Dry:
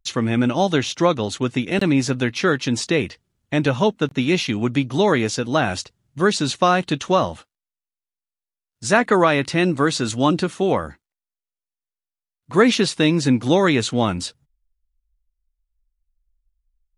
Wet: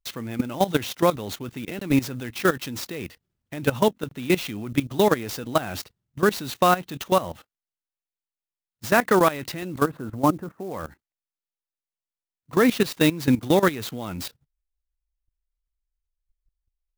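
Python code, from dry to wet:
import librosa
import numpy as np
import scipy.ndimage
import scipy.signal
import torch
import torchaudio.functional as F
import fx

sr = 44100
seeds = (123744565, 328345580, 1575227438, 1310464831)

y = fx.lowpass(x, sr, hz=1500.0, slope=24, at=(9.84, 10.73))
y = fx.level_steps(y, sr, step_db=16)
y = fx.clock_jitter(y, sr, seeds[0], jitter_ms=0.026)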